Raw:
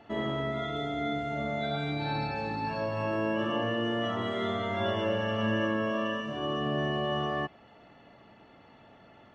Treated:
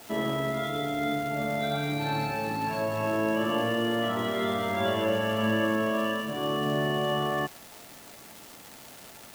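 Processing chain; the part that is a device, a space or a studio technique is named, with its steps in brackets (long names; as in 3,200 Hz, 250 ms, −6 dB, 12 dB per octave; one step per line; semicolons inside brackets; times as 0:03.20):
78 rpm shellac record (band-pass filter 110–5,800 Hz; surface crackle 390 per second −38 dBFS; white noise bed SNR 23 dB)
level +3 dB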